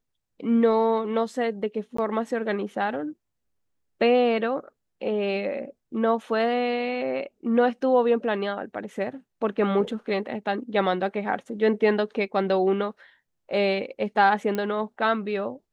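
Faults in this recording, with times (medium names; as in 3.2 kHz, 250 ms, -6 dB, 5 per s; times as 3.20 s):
1.97–1.98 s: dropout 14 ms
14.55 s: pop -15 dBFS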